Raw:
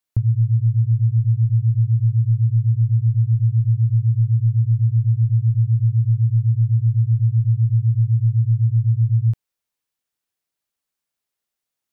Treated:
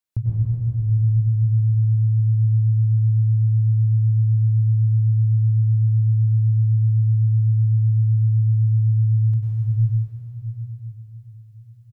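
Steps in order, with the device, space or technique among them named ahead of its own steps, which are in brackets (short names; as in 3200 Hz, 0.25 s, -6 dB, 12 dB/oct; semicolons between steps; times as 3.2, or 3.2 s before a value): cave (echo 0.377 s -10.5 dB; reverb RT60 3.9 s, pre-delay 91 ms, DRR -6.5 dB); gain -5 dB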